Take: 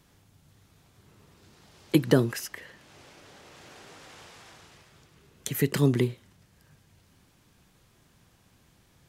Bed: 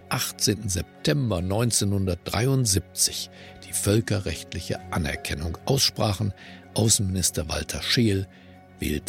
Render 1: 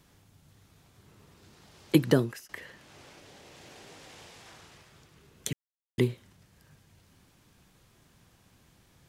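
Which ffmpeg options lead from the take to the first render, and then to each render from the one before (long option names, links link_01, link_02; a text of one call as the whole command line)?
ffmpeg -i in.wav -filter_complex "[0:a]asettb=1/sr,asplit=3[link_01][link_02][link_03];[link_01]atrim=end=3.194[link_04];[link_02]atrim=start=3.19:end=4.46,asetpts=PTS-STARTPTS,afade=type=in:duration=0.004:curve=qsin,afade=type=out:start_time=1.266:duration=0.004:curve=qsin,equalizer=frequency=1300:width_type=o:width=0.77:gain=-5.5[link_05];[link_03]atrim=start=4.456[link_06];[link_04][link_05]acrossfade=duration=0.004:curve1=hsin:curve2=qsin[link_07];[link_07][link_06]acrossfade=duration=0.004:curve1=qsin:curve2=hsin,asplit=4[link_08][link_09][link_10][link_11];[link_08]atrim=end=2.49,asetpts=PTS-STARTPTS,afade=type=out:start_time=2.04:duration=0.45:silence=0.0841395[link_12];[link_09]atrim=start=2.49:end=5.53,asetpts=PTS-STARTPTS,afade=type=in:duration=0.004:curve=hsin:silence=0.0841395,afade=type=out:start_time=3.036:duration=0.004:curve=hsin[link_13];[link_10]atrim=start=5.53:end=5.98,asetpts=PTS-STARTPTS,volume=0[link_14];[link_11]atrim=start=5.98,asetpts=PTS-STARTPTS,afade=type=in:duration=0.004:curve=hsin[link_15];[link_12][link_13][link_14][link_15]concat=n=4:v=0:a=1" out.wav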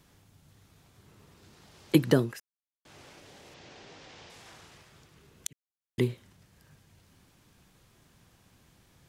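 ffmpeg -i in.wav -filter_complex "[0:a]asettb=1/sr,asplit=3[link_01][link_02][link_03];[link_01]atrim=end=3.544[link_04];[link_02]atrim=start=3.54:end=4.3,asetpts=PTS-STARTPTS,afade=type=in:duration=0.004:curve=qsin,afade=type=out:start_time=0.756:duration=0.004:curve=qsin,lowpass=frequency=6200:width=0.5412,lowpass=frequency=6200:width=1.3066[link_05];[link_03]atrim=start=4.296[link_06];[link_04][link_05]acrossfade=duration=0.004:curve1=hsin:curve2=qsin[link_07];[link_07][link_06]acrossfade=duration=0.004:curve1=qsin:curve2=hsin,asplit=4[link_08][link_09][link_10][link_11];[link_08]atrim=end=2.4,asetpts=PTS-STARTPTS,afade=type=out:start_time=2.396:duration=0.004:curve=hsin[link_12];[link_09]atrim=start=2.4:end=2.85,asetpts=PTS-STARTPTS,volume=0[link_13];[link_10]atrim=start=2.85:end=5.47,asetpts=PTS-STARTPTS,afade=type=in:duration=0.004:curve=hsin,afade=type=out:start_time=2.616:duration=0.004:curve=hsin[link_14];[link_11]atrim=start=5.47,asetpts=PTS-STARTPTS,afade=type=in:duration=0.65[link_15];[link_12][link_13][link_14][link_15]concat=n=4:v=0:a=1" out.wav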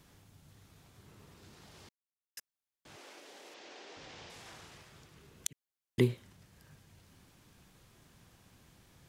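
ffmpeg -i in.wav -filter_complex "[0:a]asettb=1/sr,asplit=3[link_01][link_02][link_03];[link_01]atrim=end=2.964[link_04];[link_02]atrim=start=2.96:end=3.97,asetpts=PTS-STARTPTS,afade=type=in:duration=0.004:curve=qsin,afade=type=out:start_time=1.006:duration=0.004:curve=qsin,highpass=frequency=280:width=0.5412,highpass=frequency=280:width=1.3066[link_05];[link_03]atrim=start=3.966[link_06];[link_04][link_05]acrossfade=duration=0.004:curve1=hsin:curve2=qsin[link_07];[link_07][link_06]acrossfade=duration=0.004:curve1=qsin:curve2=hsin,asplit=3[link_08][link_09][link_10];[link_08]atrim=end=1.89,asetpts=PTS-STARTPTS,afade=type=out:start_time=1.886:duration=0.004:curve=hsin[link_11];[link_09]atrim=start=1.89:end=2.37,asetpts=PTS-STARTPTS,volume=0[link_12];[link_10]atrim=start=2.37,asetpts=PTS-STARTPTS,afade=type=in:duration=0.004:curve=hsin[link_13];[link_11][link_12][link_13]concat=n=3:v=0:a=1" out.wav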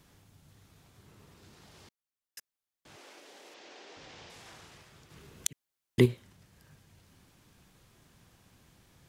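ffmpeg -i in.wav -filter_complex "[0:a]asettb=1/sr,asplit=3[link_01][link_02][link_03];[link_01]atrim=end=5.104[link_04];[link_02]atrim=start=5.1:end=6.06,asetpts=PTS-STARTPTS,afade=type=in:duration=0.004:curve=qsin,afade=type=out:start_time=0.956:duration=0.004:curve=qsin,acontrast=28[link_05];[link_03]atrim=start=6.056[link_06];[link_04][link_05]acrossfade=duration=0.004:curve1=hsin:curve2=qsin[link_07];[link_07][link_06]acrossfade=duration=0.004:curve1=qsin:curve2=hsin" out.wav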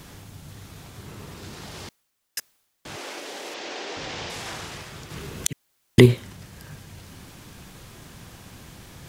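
ffmpeg -i in.wav -af "areverse,acompressor=mode=upward:threshold=-59dB:ratio=2.5,areverse,alimiter=level_in=17dB:limit=-1dB:release=50:level=0:latency=1" out.wav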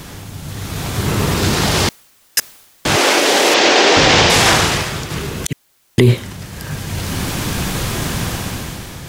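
ffmpeg -i in.wav -af "dynaudnorm=framelen=180:gausssize=9:maxgain=13dB,alimiter=level_in=11.5dB:limit=-1dB:release=50:level=0:latency=1" out.wav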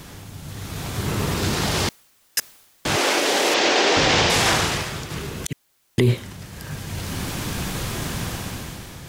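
ffmpeg -i in.wav -af "volume=-7dB" out.wav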